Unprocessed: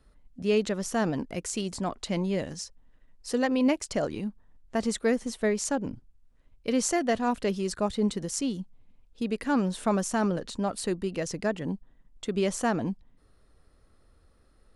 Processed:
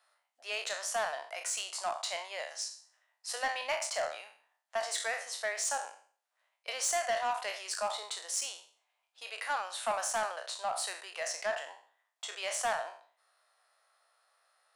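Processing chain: spectral sustain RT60 0.46 s; elliptic high-pass 670 Hz, stop band 80 dB; saturation -24.5 dBFS, distortion -15 dB

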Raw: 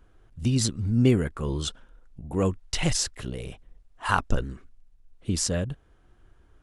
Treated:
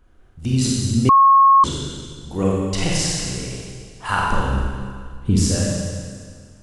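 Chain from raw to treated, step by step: 4.44–5.40 s: bass shelf 350 Hz +10 dB; Schroeder reverb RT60 1.9 s, combs from 31 ms, DRR -4.5 dB; 1.09–1.64 s: bleep 1.09 kHz -8 dBFS

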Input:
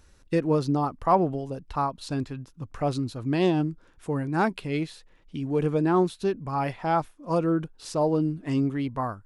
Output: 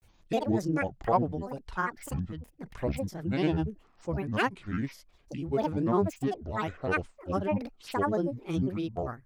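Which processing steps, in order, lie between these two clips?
granulator 100 ms, spray 23 ms, pitch spread up and down by 12 st; trim -3 dB

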